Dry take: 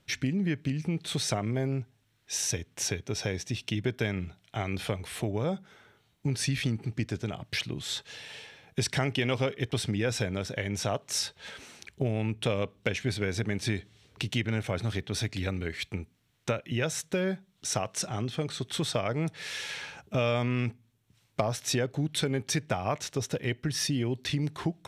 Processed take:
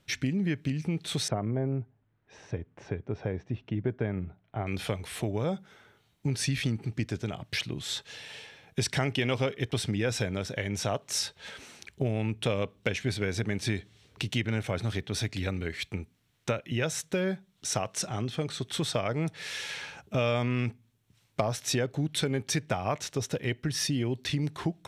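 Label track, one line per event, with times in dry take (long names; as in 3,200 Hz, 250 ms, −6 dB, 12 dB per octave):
1.280000	4.670000	low-pass filter 1,200 Hz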